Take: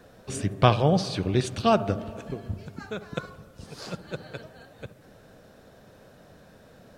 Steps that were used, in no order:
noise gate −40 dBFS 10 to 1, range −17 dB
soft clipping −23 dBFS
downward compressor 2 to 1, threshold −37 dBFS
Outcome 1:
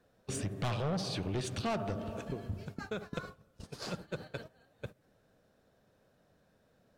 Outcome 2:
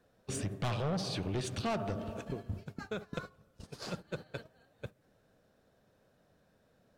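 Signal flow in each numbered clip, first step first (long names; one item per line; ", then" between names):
soft clipping, then noise gate, then downward compressor
soft clipping, then downward compressor, then noise gate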